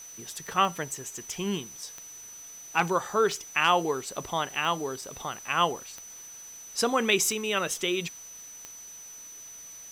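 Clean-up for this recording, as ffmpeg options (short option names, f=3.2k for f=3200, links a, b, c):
-af "adeclick=t=4,bandreject=f=6k:w=30,afwtdn=0.0025"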